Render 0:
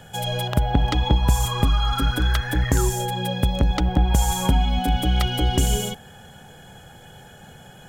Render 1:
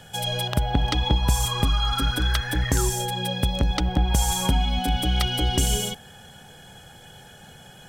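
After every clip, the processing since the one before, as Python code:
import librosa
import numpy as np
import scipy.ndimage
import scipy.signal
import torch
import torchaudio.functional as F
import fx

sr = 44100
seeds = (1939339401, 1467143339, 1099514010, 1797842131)

y = fx.peak_eq(x, sr, hz=6000.0, db=7.0, octaves=2.5)
y = fx.notch(y, sr, hz=6900.0, q=9.7)
y = y * librosa.db_to_amplitude(-3.0)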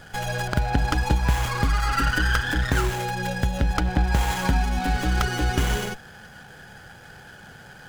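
y = fx.peak_eq(x, sr, hz=1500.0, db=11.5, octaves=0.48)
y = fx.running_max(y, sr, window=9)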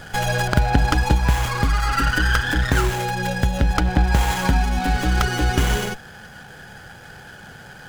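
y = fx.rider(x, sr, range_db=10, speed_s=2.0)
y = y * librosa.db_to_amplitude(3.5)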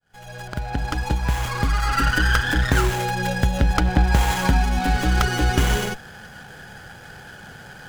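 y = fx.fade_in_head(x, sr, length_s=2.05)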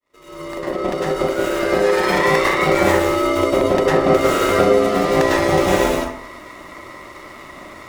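y = fx.rev_plate(x, sr, seeds[0], rt60_s=0.64, hf_ratio=0.5, predelay_ms=90, drr_db=-8.0)
y = y * np.sin(2.0 * np.pi * 460.0 * np.arange(len(y)) / sr)
y = y * librosa.db_to_amplitude(-2.0)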